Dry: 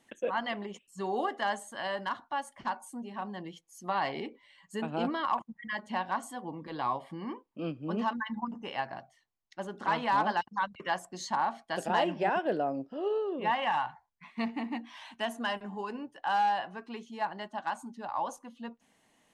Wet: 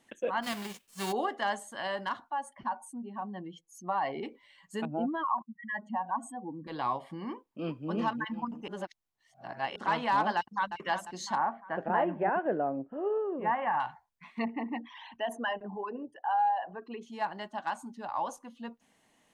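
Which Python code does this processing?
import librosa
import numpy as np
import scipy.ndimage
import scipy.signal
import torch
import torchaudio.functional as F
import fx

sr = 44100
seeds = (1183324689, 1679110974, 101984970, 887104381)

y = fx.envelope_flatten(x, sr, power=0.3, at=(0.42, 1.11), fade=0.02)
y = fx.spec_expand(y, sr, power=1.5, at=(2.3, 4.23))
y = fx.spec_expand(y, sr, power=2.1, at=(4.85, 6.67))
y = fx.echo_throw(y, sr, start_s=7.31, length_s=0.57, ms=360, feedback_pct=25, wet_db=-5.0)
y = fx.echo_throw(y, sr, start_s=10.36, length_s=0.4, ms=350, feedback_pct=50, wet_db=-9.0)
y = fx.lowpass(y, sr, hz=1900.0, slope=24, at=(11.38, 13.8))
y = fx.envelope_sharpen(y, sr, power=2.0, at=(14.38, 17.01), fade=0.02)
y = fx.edit(y, sr, fx.reverse_span(start_s=8.68, length_s=1.08), tone=tone)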